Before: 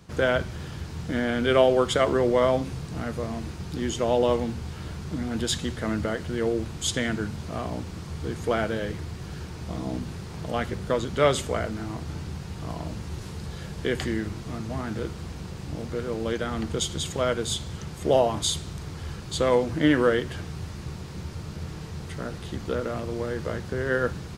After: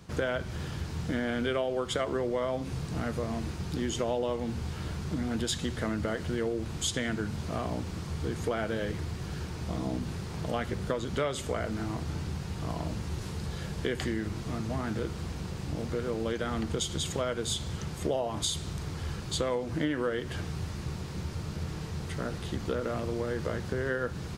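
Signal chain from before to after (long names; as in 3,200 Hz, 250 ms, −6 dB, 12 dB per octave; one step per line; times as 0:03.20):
downward compressor 6 to 1, threshold −27 dBFS, peak gain reduction 13 dB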